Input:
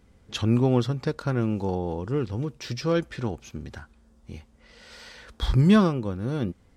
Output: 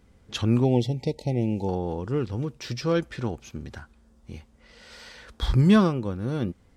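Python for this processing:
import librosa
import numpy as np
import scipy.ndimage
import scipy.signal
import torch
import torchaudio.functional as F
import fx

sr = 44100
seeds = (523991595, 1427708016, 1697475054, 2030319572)

y = fx.spec_erase(x, sr, start_s=0.64, length_s=1.04, low_hz=910.0, high_hz=1900.0)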